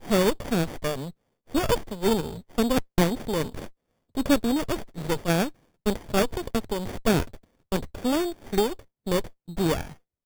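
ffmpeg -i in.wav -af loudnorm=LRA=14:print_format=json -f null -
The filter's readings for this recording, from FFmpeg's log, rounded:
"input_i" : "-27.2",
"input_tp" : "-8.5",
"input_lra" : "2.7",
"input_thresh" : "-37.8",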